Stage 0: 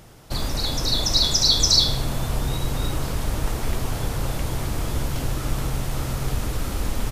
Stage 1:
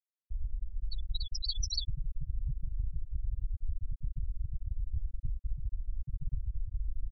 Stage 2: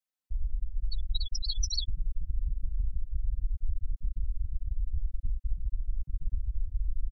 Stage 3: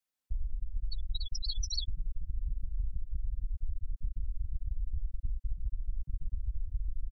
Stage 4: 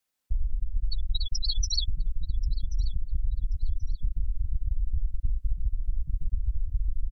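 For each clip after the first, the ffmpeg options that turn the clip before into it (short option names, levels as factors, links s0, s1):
-af "afftfilt=real='re*gte(hypot(re,im),0.562)':imag='im*gte(hypot(re,im),0.562)':win_size=1024:overlap=0.75,equalizer=f=4100:w=1.2:g=-8.5,acompressor=threshold=0.0631:ratio=6,volume=0.668"
-af "aecho=1:1:3.9:0.86"
-af "acompressor=threshold=0.0316:ratio=6,volume=1.26"
-af "aecho=1:1:1083|2166:0.0944|0.0283,volume=2.24"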